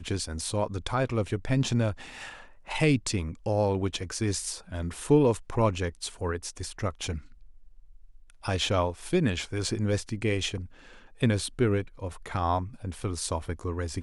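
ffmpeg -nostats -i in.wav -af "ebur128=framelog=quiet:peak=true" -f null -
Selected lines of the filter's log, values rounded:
Integrated loudness:
  I:         -29.0 LUFS
  Threshold: -39.7 LUFS
Loudness range:
  LRA:         3.9 LU
  Threshold: -49.5 LUFS
  LRA low:   -31.5 LUFS
  LRA high:  -27.7 LUFS
True peak:
  Peak:      -11.0 dBFS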